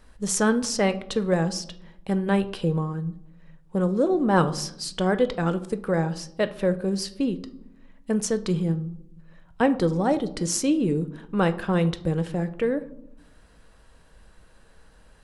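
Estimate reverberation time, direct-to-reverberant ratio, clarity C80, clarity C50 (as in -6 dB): 0.80 s, 9.5 dB, 19.5 dB, 16.0 dB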